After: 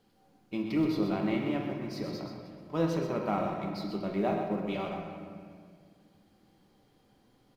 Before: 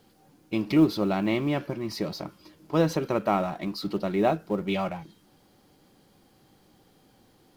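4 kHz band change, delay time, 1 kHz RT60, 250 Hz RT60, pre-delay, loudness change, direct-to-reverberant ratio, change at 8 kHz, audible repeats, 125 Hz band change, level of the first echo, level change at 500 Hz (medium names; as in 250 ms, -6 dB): -7.5 dB, 127 ms, 1.8 s, 2.6 s, 4 ms, -5.5 dB, 0.0 dB, no reading, 1, -5.0 dB, -8.0 dB, -5.5 dB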